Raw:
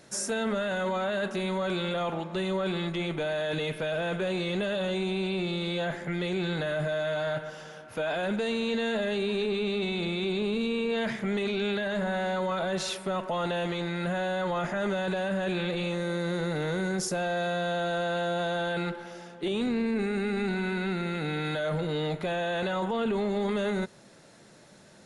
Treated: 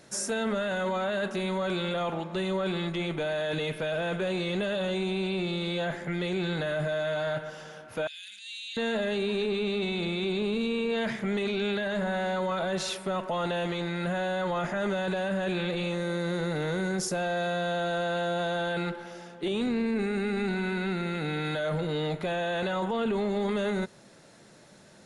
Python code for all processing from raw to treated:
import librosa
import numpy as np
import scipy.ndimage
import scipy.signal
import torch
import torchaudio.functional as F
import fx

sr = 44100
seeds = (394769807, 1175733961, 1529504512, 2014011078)

y = fx.chain(x, sr, fx.cheby2_highpass(hz=1100.0, order=4, stop_db=50),
    fx.transient(attack_db=-6, sustain_db=8), at=(8.07, 8.77))